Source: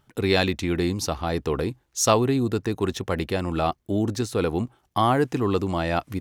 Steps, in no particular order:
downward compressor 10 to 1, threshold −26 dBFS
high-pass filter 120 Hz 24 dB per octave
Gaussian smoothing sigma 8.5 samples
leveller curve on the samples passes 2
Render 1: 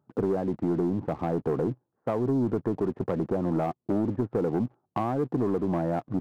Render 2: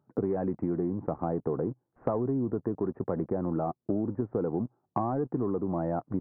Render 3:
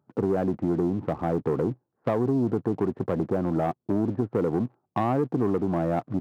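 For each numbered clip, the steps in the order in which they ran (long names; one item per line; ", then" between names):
high-pass filter, then downward compressor, then Gaussian smoothing, then leveller curve on the samples
high-pass filter, then leveller curve on the samples, then Gaussian smoothing, then downward compressor
Gaussian smoothing, then downward compressor, then leveller curve on the samples, then high-pass filter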